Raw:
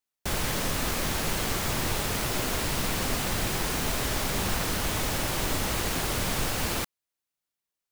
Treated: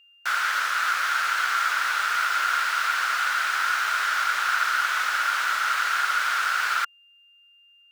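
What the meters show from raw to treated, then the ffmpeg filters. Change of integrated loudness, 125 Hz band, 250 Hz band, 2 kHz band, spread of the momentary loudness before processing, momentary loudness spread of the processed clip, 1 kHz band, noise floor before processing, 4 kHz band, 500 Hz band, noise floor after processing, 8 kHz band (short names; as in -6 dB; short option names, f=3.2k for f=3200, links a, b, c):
+5.0 dB, under -40 dB, under -25 dB, +11.5 dB, 0 LU, 1 LU, +10.0 dB, under -85 dBFS, +1.5 dB, -14.0 dB, -57 dBFS, -4.0 dB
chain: -filter_complex "[0:a]acrossover=split=6400[a][b];[b]acompressor=threshold=-44dB:ratio=4:attack=1:release=60[c];[a][c]amix=inputs=2:normalize=0,highpass=f=1.4k:t=q:w=9.1,aeval=exprs='val(0)+0.00178*sin(2*PI*2800*n/s)':c=same,volume=1dB"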